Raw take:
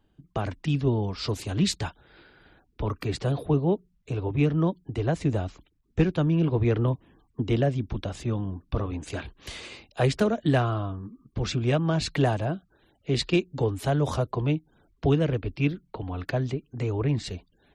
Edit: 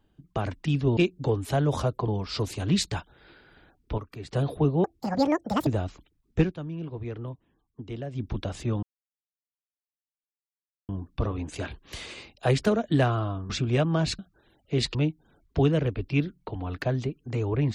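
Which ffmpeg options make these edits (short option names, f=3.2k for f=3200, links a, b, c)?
-filter_complex "[0:a]asplit=13[a][b][c][d][e][f][g][h][i][j][k][l][m];[a]atrim=end=0.972[n];[b]atrim=start=13.308:end=14.422[o];[c]atrim=start=0.968:end=2.872[p];[d]atrim=start=2.868:end=3.222,asetpts=PTS-STARTPTS,volume=-10.5dB[q];[e]atrim=start=3.218:end=3.734[r];[f]atrim=start=3.73:end=5.27,asetpts=PTS-STARTPTS,asetrate=82026,aresample=44100[s];[g]atrim=start=5.266:end=6.15,asetpts=PTS-STARTPTS,afade=t=out:st=0.744:d=0.14:silence=0.251189[t];[h]atrim=start=6.15:end=7.71,asetpts=PTS-STARTPTS,volume=-12dB[u];[i]atrim=start=7.71:end=8.43,asetpts=PTS-STARTPTS,afade=t=in:d=0.14:silence=0.251189,afade=t=out:st=0.716:d=0.004:c=hsin,apad=pad_dur=2.06[v];[j]atrim=start=8.43:end=11.042,asetpts=PTS-STARTPTS,afade=t=in:d=0.004:c=hsin[w];[k]atrim=start=11.438:end=12.132[x];[l]atrim=start=12.548:end=13.312[y];[m]atrim=start=14.418[z];[n][o]acrossfade=d=0.004:c1=hsin:c2=hsin[aa];[aa][p]acrossfade=d=0.004:c1=hsin:c2=hsin[ab];[ab][q]acrossfade=d=0.004:c1=hsin:c2=hsin[ac];[ac][r]acrossfade=d=0.004:c1=hsin:c2=hsin[ad];[ad][s]acrossfade=d=0.004:c1=hsin:c2=hsin[ae];[t][u][v][w]concat=n=4:v=0:a=1[af];[ae][af]acrossfade=d=0.004:c1=hsin:c2=hsin[ag];[ag][x]acrossfade=d=0.004:c1=hsin:c2=hsin[ah];[ah][y]acrossfade=d=0.004:c1=hsin:c2=hsin[ai];[ai][z]acrossfade=d=0.004:c1=hsin:c2=hsin"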